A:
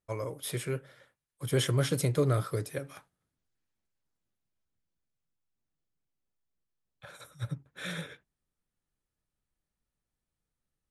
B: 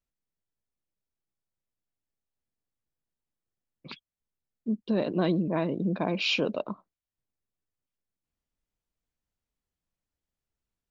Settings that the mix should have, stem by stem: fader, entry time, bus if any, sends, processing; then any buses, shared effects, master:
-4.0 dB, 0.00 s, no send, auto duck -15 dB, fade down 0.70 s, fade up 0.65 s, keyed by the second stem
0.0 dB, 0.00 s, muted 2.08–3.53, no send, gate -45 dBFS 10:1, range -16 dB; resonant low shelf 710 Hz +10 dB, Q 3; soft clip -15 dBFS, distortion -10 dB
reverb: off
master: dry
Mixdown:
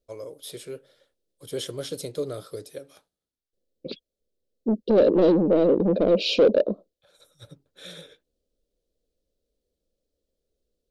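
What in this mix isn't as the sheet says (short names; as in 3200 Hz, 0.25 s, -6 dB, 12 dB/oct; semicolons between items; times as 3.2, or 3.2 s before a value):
stem B: missing gate -45 dBFS 10:1, range -16 dB; master: extra graphic EQ 125/500/1000/2000/4000 Hz -11/+6/-6/-8/+8 dB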